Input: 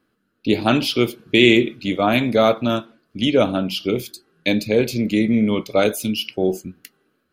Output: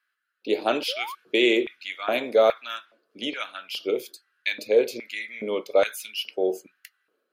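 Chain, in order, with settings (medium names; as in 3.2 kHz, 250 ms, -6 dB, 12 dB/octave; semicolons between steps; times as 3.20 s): LFO high-pass square 1.2 Hz 470–1700 Hz; painted sound rise, 0.88–1.15 s, 470–1200 Hz -28 dBFS; trim -7.5 dB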